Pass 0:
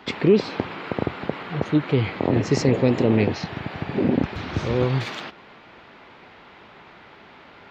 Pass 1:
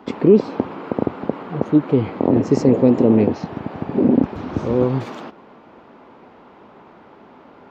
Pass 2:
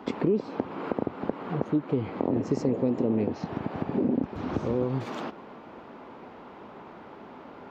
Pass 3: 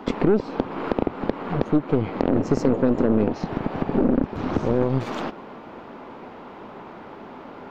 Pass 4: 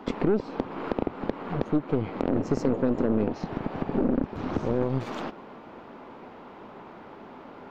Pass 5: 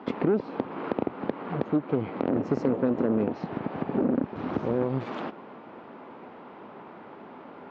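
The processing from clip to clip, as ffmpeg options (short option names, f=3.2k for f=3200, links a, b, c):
-af "equalizer=f=250:t=o:w=1:g=9,equalizer=f=500:t=o:w=1:g=5,equalizer=f=1k:t=o:w=1:g=5,equalizer=f=2k:t=o:w=1:g=-6,equalizer=f=4k:t=o:w=1:g=-7,volume=-2.5dB"
-af "acompressor=threshold=-28dB:ratio=2.5"
-af "aeval=exprs='0.299*(cos(1*acos(clip(val(0)/0.299,-1,1)))-cos(1*PI/2))+0.0237*(cos(8*acos(clip(val(0)/0.299,-1,1)))-cos(8*PI/2))':c=same,volume=5.5dB"
-af "asoftclip=type=hard:threshold=-7.5dB,volume=-5dB"
-af "highpass=120,lowpass=3.4k"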